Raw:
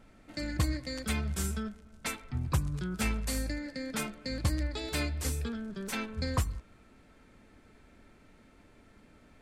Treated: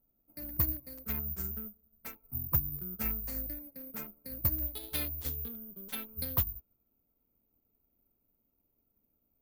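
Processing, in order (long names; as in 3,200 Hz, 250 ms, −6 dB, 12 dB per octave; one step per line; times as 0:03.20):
adaptive Wiener filter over 25 samples
parametric band 3,500 Hz −8 dB 0.57 octaves, from 0:04.66 +9 dB
bad sample-rate conversion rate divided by 3×, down filtered, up zero stuff
expander for the loud parts 1.5 to 1, over −54 dBFS
level −4.5 dB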